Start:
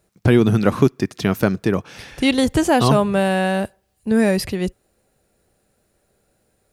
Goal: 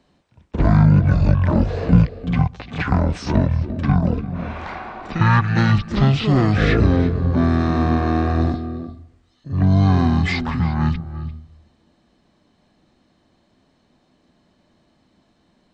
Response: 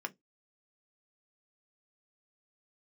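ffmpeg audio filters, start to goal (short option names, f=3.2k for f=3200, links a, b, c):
-filter_complex "[0:a]asplit=2[a][b];[b]asetrate=66075,aresample=44100,atempo=0.66742,volume=-10dB[c];[a][c]amix=inputs=2:normalize=0,asplit=2[d][e];[e]highpass=f=720:p=1,volume=14dB,asoftclip=type=tanh:threshold=0dB[f];[d][f]amix=inputs=2:normalize=0,lowpass=f=2.6k:p=1,volume=-6dB,acrossover=split=400|3000[g][h][i];[h]acompressor=threshold=-25dB:ratio=3[j];[g][j][i]amix=inputs=3:normalize=0,asplit=2[k][l];[1:a]atrim=start_sample=2205,asetrate=22932,aresample=44100,adelay=148[m];[l][m]afir=irnorm=-1:irlink=0,volume=-15.5dB[n];[k][n]amix=inputs=2:normalize=0,asetrate=18846,aresample=44100,volume=1dB"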